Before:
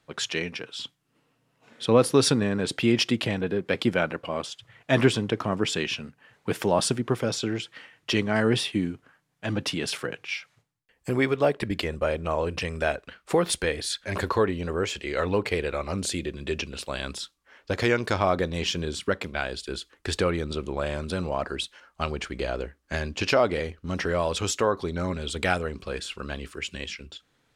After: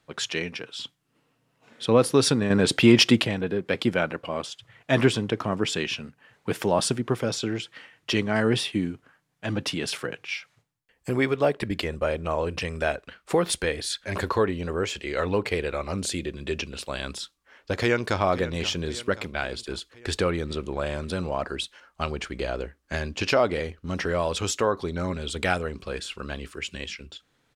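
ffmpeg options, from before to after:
ffmpeg -i in.wav -filter_complex "[0:a]asettb=1/sr,asplit=3[link_01][link_02][link_03];[link_01]atrim=end=2.504[link_04];[link_02]atrim=start=2.5:end=3.23,asetpts=PTS-STARTPTS,afade=type=in:duration=0.004:curve=qsin,afade=type=out:start_time=0.726:duration=0.004:curve=qsin,acontrast=72[link_05];[link_03]atrim=start=3.226[link_06];[link_04][link_05]acrossfade=duration=0.004:curve1=hsin:curve2=qsin[link_07];[link_07][link_06]acrossfade=duration=0.004:curve1=qsin:curve2=hsin,asplit=2[link_08][link_09];[link_09]afade=type=in:start_time=17.79:duration=0.01,afade=type=out:start_time=18.2:duration=0.01,aecho=0:1:530|1060|1590|2120|2650|3180:0.188365|0.113019|0.0678114|0.0406868|0.0244121|0.0146473[link_10];[link_08][link_10]amix=inputs=2:normalize=0" out.wav

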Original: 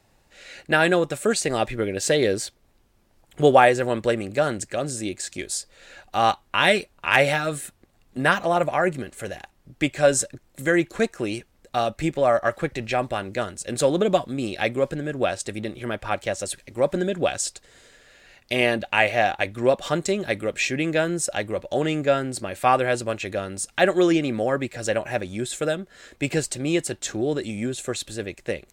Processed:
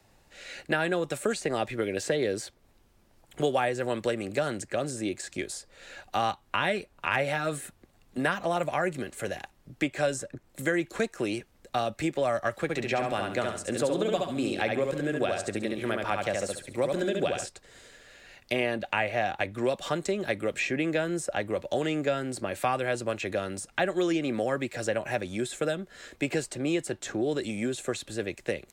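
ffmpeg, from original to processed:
ffmpeg -i in.wav -filter_complex "[0:a]asettb=1/sr,asplit=3[link_01][link_02][link_03];[link_01]atrim=end=12.624[link_04];[link_02]atrim=start=12.62:end=17.46,asetpts=PTS-STARTPTS,afade=type=in:duration=0.004:curve=qsin,afade=type=out:start_time=4.836:duration=0.004:curve=qsin,aecho=1:1:69|138|207|276:0.668|0.187|0.0524|0.0147,atrim=end_sample=213444[link_05];[link_03]atrim=start=17.456[link_06];[link_04][link_05]acrossfade=duration=0.004:curve1=hsin:curve2=qsin[link_07];[link_07][link_06]acrossfade=duration=0.004:curve1=qsin:curve2=hsin,acrossover=split=84|230|2300[link_08][link_09][link_10][link_11];[link_08]acompressor=threshold=-59dB:ratio=4[link_12];[link_09]acompressor=threshold=-40dB:ratio=4[link_13];[link_10]acompressor=threshold=-26dB:ratio=4[link_14];[link_11]acompressor=threshold=-39dB:ratio=4[link_15];[link_12][link_13][link_14][link_15]amix=inputs=4:normalize=0" out.wav

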